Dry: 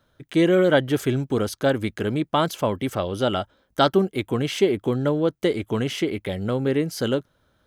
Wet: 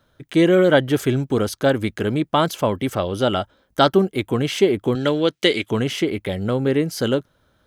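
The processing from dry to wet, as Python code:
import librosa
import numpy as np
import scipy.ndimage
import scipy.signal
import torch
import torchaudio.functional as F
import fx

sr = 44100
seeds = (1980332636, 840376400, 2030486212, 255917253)

y = fx.weighting(x, sr, curve='D', at=(4.95, 5.71))
y = y * 10.0 ** (3.0 / 20.0)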